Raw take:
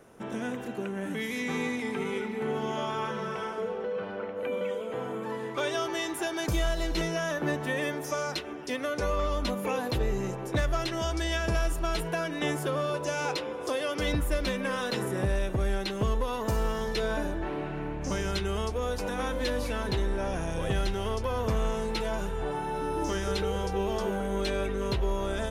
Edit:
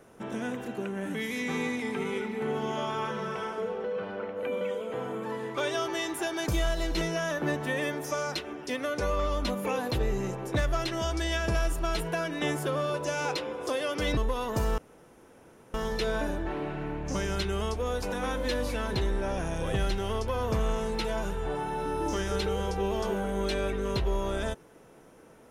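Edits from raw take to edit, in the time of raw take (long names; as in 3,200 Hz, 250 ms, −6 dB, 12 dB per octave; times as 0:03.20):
0:14.17–0:16.09: remove
0:16.70: splice in room tone 0.96 s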